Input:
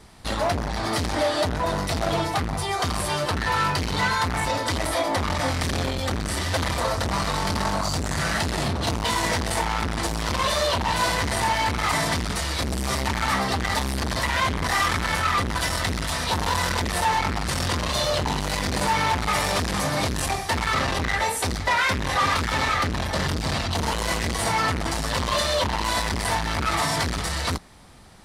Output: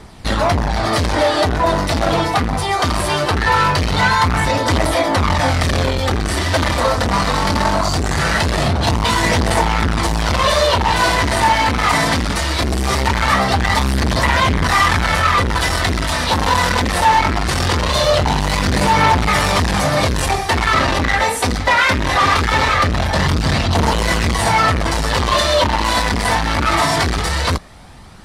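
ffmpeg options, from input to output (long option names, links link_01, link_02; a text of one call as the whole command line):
ffmpeg -i in.wav -af "aphaser=in_gain=1:out_gain=1:delay=4.2:decay=0.26:speed=0.21:type=triangular,highshelf=frequency=6000:gain=-6.5,volume=8.5dB" out.wav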